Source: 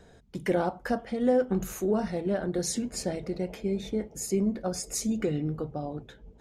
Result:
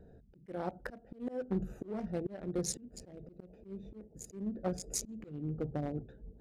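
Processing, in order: local Wiener filter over 41 samples; slow attack 471 ms

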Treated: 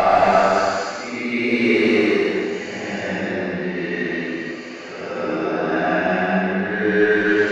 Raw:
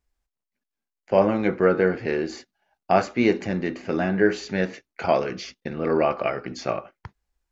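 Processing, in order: overdrive pedal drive 16 dB, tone 3.9 kHz, clips at -3.5 dBFS; Paulstretch 5.4×, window 0.25 s, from 2.91 s; trim -1 dB

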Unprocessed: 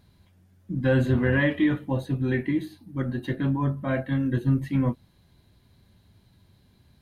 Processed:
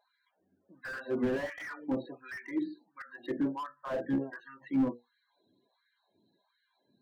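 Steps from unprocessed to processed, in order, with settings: 3.92–4.40 s: octave divider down 1 oct, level +1 dB; hum notches 60/120/180/240/300/360/420/480 Hz; LFO high-pass sine 1.4 Hz 270–1600 Hz; loudest bins only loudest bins 32; slew-rate limiter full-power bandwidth 41 Hz; trim -7 dB

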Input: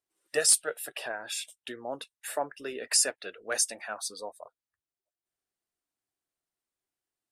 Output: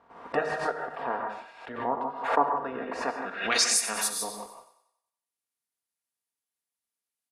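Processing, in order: spectral peaks clipped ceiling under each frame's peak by 17 dB; high-pass 55 Hz; comb 4.3 ms, depth 46%; de-hum 157.1 Hz, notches 33; waveshaping leveller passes 1; gated-style reverb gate 180 ms rising, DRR 3 dB; low-pass sweep 1 kHz -> 11 kHz, 3.24–3.81 s; thinning echo 93 ms, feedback 48%, high-pass 360 Hz, level -11.5 dB; swell ahead of each attack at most 82 dB/s; trim -2 dB

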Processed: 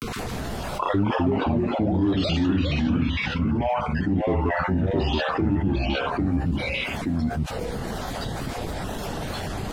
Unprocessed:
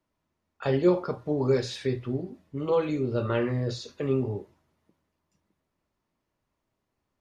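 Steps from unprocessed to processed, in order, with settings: random holes in the spectrogram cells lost 33%; granulator 100 ms, grains 20 per s, spray 19 ms, pitch spread up and down by 0 st; in parallel at -4.5 dB: hard clipper -26.5 dBFS, distortion -8 dB; on the sum: speed mistake 45 rpm record played at 33 rpm; upward compressor, threshold -35 dBFS; ever faster or slower copies 139 ms, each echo -2 st, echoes 2; level flattener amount 70%; trim -1.5 dB

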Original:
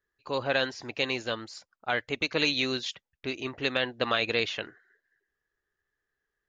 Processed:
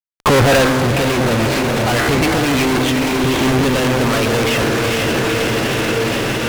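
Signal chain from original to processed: square wave that keeps the level; low-pass 2.7 kHz 24 dB/octave; bass shelf 280 Hz +8.5 dB; de-hum 64.34 Hz, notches 35; compression, threshold -28 dBFS, peak gain reduction 13 dB; fuzz box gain 55 dB, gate -55 dBFS; on a send: echo that smears into a reverb 469 ms, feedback 46%, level -3.5 dB; on the sum: loudness maximiser +26.5 dB; trim -8 dB

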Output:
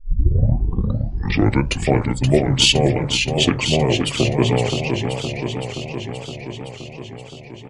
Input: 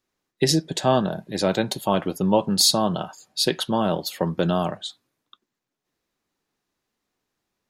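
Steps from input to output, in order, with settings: tape start-up on the opening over 1.82 s; pitch shift -6.5 st; modulated delay 520 ms, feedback 70%, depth 157 cents, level -6 dB; trim +4 dB

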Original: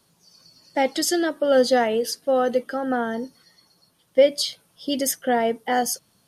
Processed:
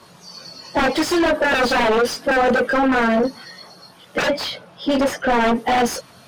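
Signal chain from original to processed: coarse spectral quantiser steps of 15 dB; chorus voices 6, 0.5 Hz, delay 22 ms, depth 1.1 ms; sine folder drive 20 dB, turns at -4.5 dBFS; 4.19–5.41 s: low-pass 2.2 kHz 6 dB/octave; overdrive pedal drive 19 dB, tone 1.3 kHz, clips at -2.5 dBFS; trim -8 dB

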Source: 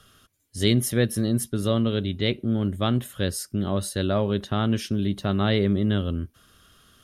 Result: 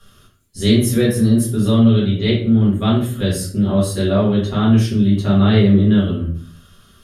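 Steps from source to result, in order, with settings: simulated room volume 51 m³, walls mixed, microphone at 1.7 m; trim -3.5 dB

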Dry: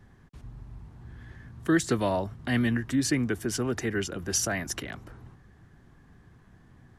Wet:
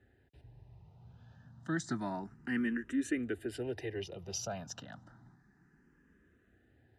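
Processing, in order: distance through air 54 m; comb of notches 1.1 kHz; barber-pole phaser +0.3 Hz; trim -5.5 dB

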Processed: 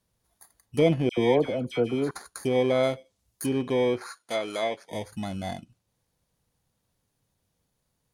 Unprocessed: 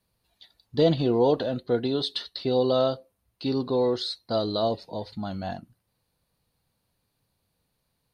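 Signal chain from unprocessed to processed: bit-reversed sample order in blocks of 16 samples; 4.11–4.90 s: frequency weighting A; low-pass that closes with the level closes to 2.7 kHz, closed at -22.5 dBFS; 1.09–2.11 s: phase dispersion lows, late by 84 ms, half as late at 1.6 kHz; 2.83–3.46 s: treble shelf 6 kHz +10.5 dB

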